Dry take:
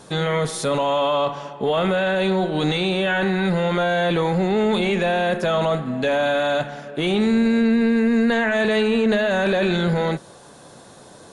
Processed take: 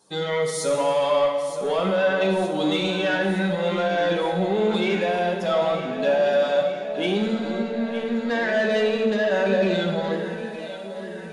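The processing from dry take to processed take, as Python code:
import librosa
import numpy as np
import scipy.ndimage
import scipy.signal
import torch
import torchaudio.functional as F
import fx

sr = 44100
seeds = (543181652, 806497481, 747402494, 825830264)

y = fx.bin_expand(x, sr, power=1.5)
y = scipy.signal.sosfilt(scipy.signal.butter(2, 230.0, 'highpass', fs=sr, output='sos'), y)
y = 10.0 ** (-18.5 / 20.0) * np.tanh(y / 10.0 ** (-18.5 / 20.0))
y = fx.echo_alternate(y, sr, ms=459, hz=850.0, feedback_pct=76, wet_db=-9)
y = fx.rev_fdn(y, sr, rt60_s=1.3, lf_ratio=0.95, hf_ratio=1.0, size_ms=31.0, drr_db=2.5)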